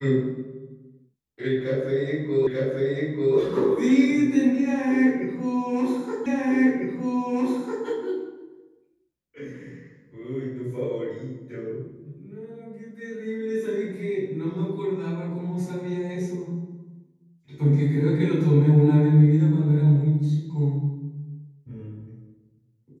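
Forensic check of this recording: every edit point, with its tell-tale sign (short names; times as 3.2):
2.47 repeat of the last 0.89 s
6.26 repeat of the last 1.6 s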